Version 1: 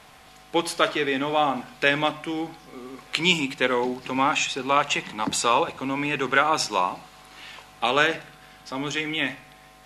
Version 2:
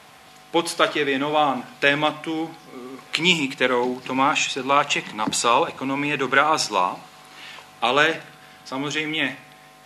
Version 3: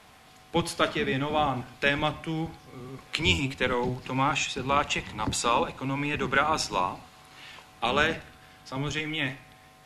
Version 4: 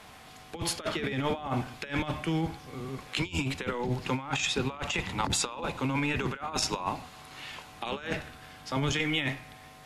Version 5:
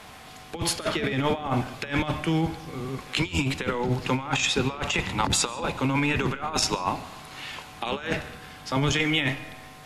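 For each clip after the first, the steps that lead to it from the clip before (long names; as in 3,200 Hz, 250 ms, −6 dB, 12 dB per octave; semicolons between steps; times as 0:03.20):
high-pass filter 100 Hz 12 dB per octave; level +2.5 dB
sub-octave generator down 1 octave, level +2 dB; level −6.5 dB
compressor whose output falls as the input rises −30 dBFS, ratio −0.5
convolution reverb RT60 1.3 s, pre-delay 95 ms, DRR 18 dB; level +5 dB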